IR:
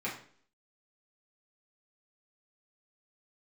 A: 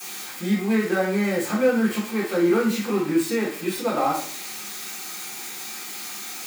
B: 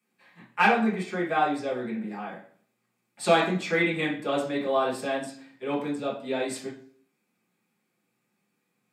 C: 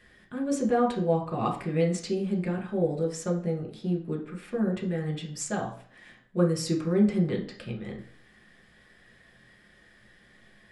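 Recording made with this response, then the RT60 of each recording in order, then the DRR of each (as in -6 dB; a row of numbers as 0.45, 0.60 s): B; 0.50, 0.50, 0.50 s; -17.0, -8.0, -1.0 dB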